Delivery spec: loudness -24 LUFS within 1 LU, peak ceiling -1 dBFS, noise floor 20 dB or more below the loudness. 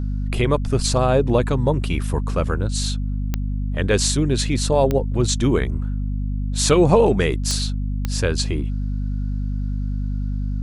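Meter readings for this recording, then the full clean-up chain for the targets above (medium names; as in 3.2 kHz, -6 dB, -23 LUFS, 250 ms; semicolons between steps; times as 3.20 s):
clicks found 4; hum 50 Hz; highest harmonic 250 Hz; hum level -21 dBFS; loudness -21.0 LUFS; peak level -3.0 dBFS; loudness target -24.0 LUFS
-> de-click; hum notches 50/100/150/200/250 Hz; trim -3 dB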